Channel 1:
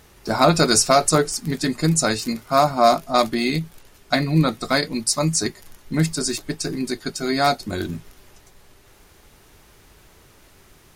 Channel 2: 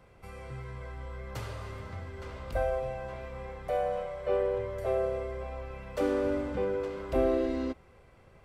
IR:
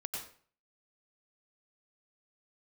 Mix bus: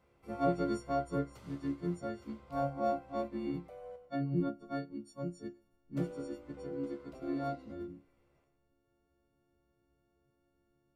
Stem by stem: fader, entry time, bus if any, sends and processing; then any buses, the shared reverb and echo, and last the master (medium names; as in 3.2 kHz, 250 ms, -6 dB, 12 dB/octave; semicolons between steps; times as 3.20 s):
-15.5 dB, 0.00 s, send -23.5 dB, partials quantised in pitch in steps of 4 st; low-pass 1.7 kHz 6 dB/octave; tilt shelf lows +10 dB, about 790 Hz
+0.5 dB, 0.00 s, muted 3.96–5.96 s, send -11 dB, band-stop 1.7 kHz, Q 7.7; compression 2.5:1, threshold -33 dBFS, peak gain reduction 7.5 dB; auto duck -7 dB, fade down 1.95 s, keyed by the first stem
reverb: on, RT60 0.45 s, pre-delay 87 ms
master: bass shelf 65 Hz -8.5 dB; feedback comb 70 Hz, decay 0.23 s, harmonics all, mix 80%; upward expansion 1.5:1, over -42 dBFS